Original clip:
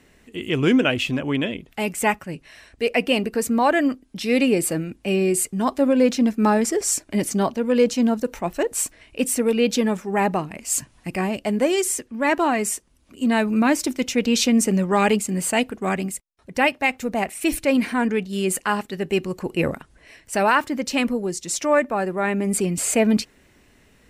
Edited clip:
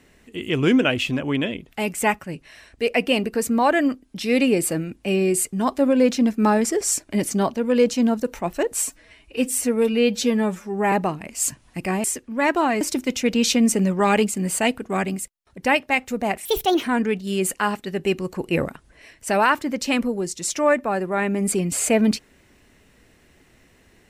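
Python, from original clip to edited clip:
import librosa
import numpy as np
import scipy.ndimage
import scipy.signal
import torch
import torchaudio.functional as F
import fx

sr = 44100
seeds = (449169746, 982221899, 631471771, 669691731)

y = fx.edit(x, sr, fx.stretch_span(start_s=8.82, length_s=1.4, factor=1.5),
    fx.cut(start_s=11.34, length_s=0.53),
    fx.cut(start_s=12.64, length_s=1.09),
    fx.speed_span(start_s=17.37, length_s=0.52, speed=1.36), tone=tone)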